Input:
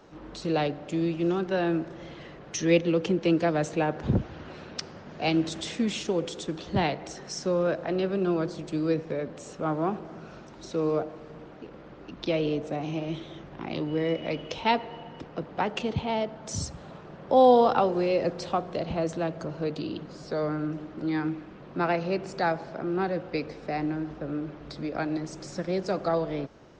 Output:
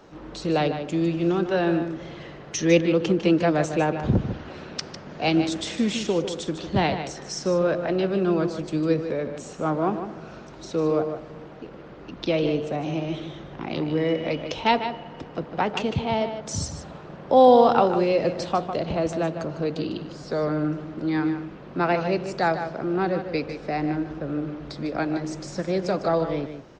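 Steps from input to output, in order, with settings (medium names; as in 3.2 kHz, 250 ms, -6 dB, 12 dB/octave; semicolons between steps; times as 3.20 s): echo from a far wall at 26 m, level -9 dB; trim +3.5 dB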